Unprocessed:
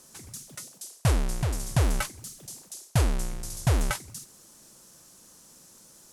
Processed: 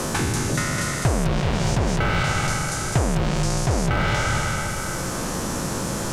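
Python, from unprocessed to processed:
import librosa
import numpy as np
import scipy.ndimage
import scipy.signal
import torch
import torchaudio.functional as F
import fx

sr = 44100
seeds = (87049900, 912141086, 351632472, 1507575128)

p1 = fx.spec_trails(x, sr, decay_s=1.64)
p2 = fx.low_shelf(p1, sr, hz=100.0, db=-5.5)
p3 = fx.env_lowpass_down(p2, sr, base_hz=1100.0, full_db=-18.5)
p4 = fx.high_shelf(p3, sr, hz=11000.0, db=-7.5)
p5 = fx.over_compress(p4, sr, threshold_db=-32.0, ratio=-1.0)
p6 = p4 + (p5 * 10.0 ** (-2.0 / 20.0))
p7 = np.clip(10.0 ** (19.5 / 20.0) * p6, -1.0, 1.0) / 10.0 ** (19.5 / 20.0)
p8 = p7 + fx.echo_single(p7, sr, ms=206, db=-4.5, dry=0)
p9 = fx.band_squash(p8, sr, depth_pct=100)
y = p9 * 10.0 ** (2.0 / 20.0)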